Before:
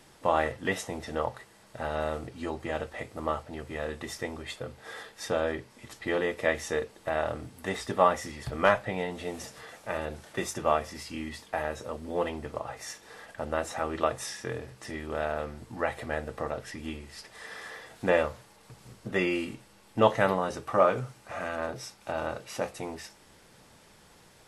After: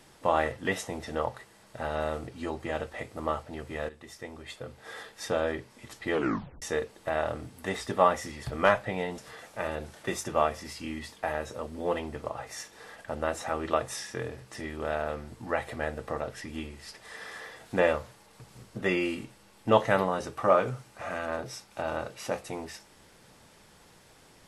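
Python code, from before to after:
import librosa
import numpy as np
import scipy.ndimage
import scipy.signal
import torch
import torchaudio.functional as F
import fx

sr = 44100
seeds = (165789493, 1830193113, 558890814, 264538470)

y = fx.edit(x, sr, fx.fade_in_from(start_s=3.89, length_s=1.14, floor_db=-13.5),
    fx.tape_stop(start_s=6.13, length_s=0.49),
    fx.cut(start_s=9.18, length_s=0.3), tone=tone)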